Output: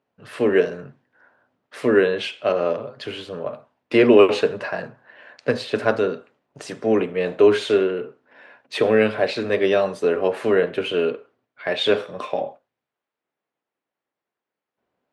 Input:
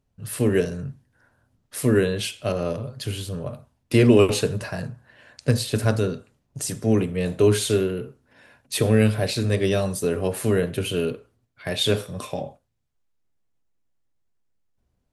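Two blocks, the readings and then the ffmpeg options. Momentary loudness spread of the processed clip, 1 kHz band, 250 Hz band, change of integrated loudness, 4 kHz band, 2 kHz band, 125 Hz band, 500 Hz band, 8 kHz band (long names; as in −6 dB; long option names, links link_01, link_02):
15 LU, +6.5 dB, −0.5 dB, +2.5 dB, 0.0 dB, +5.5 dB, −13.0 dB, +5.0 dB, below −10 dB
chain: -af "highpass=390,lowpass=2500,volume=7dB"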